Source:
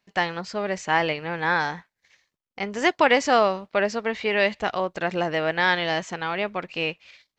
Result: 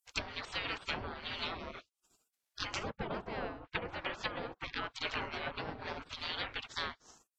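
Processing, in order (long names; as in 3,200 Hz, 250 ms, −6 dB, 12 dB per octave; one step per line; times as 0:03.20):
gate on every frequency bin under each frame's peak −25 dB weak
treble cut that deepens with the level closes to 660 Hz, closed at −38 dBFS
level +11 dB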